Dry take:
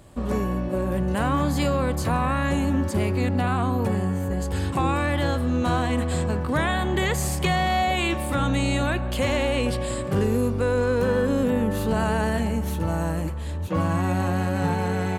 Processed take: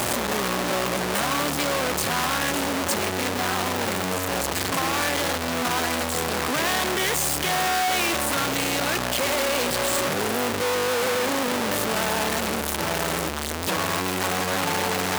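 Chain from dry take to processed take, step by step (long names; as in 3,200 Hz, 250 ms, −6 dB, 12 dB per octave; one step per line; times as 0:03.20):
sign of each sample alone
high-pass filter 440 Hz 6 dB per octave
level +2.5 dB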